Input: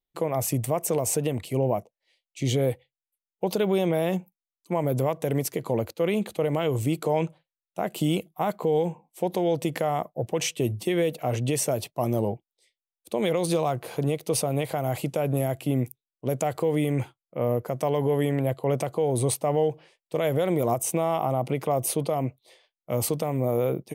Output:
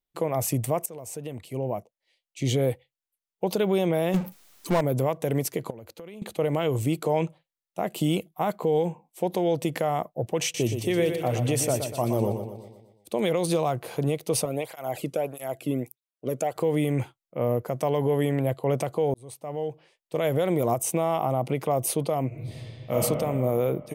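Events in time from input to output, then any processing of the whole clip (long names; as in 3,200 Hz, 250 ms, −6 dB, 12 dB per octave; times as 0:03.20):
0:00.86–0:02.47: fade in, from −18.5 dB
0:04.14–0:04.81: power curve on the samples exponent 0.5
0:05.70–0:06.22: downward compressor 8 to 1, threshold −39 dBFS
0:07.22–0:08.03: notch filter 1,500 Hz, Q 13
0:10.42–0:13.21: repeating echo 121 ms, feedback 50%, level −7.5 dB
0:14.45–0:16.56: through-zero flanger with one copy inverted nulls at 1.6 Hz, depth 1.4 ms
0:19.14–0:20.26: fade in
0:22.27–0:22.93: thrown reverb, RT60 2.7 s, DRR −8.5 dB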